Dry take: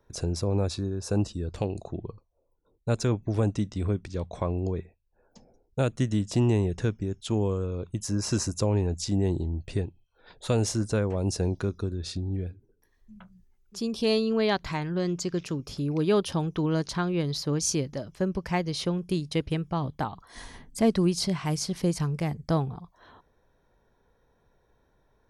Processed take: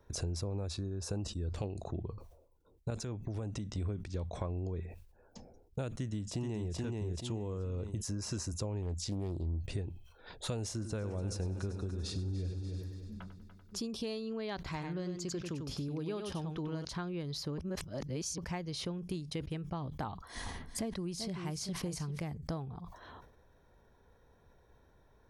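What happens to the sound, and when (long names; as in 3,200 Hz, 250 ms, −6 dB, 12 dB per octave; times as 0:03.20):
0:02.90–0:03.78: downward compressor 4 to 1, threshold −33 dBFS
0:05.96–0:06.73: delay throw 430 ms, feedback 30%, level −3 dB
0:08.82–0:09.57: highs frequency-modulated by the lows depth 0.34 ms
0:10.72–0:13.86: echo machine with several playback heads 97 ms, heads first and third, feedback 54%, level −13 dB
0:14.56–0:16.85: single-tap delay 95 ms −6.5 dB
0:17.58–0:18.38: reverse
0:20.07–0:22.19: single-tap delay 388 ms −11 dB
whole clip: downward compressor 6 to 1, threshold −38 dBFS; parametric band 76 Hz +6 dB 0.66 octaves; level that may fall only so fast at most 77 dB per second; level +1 dB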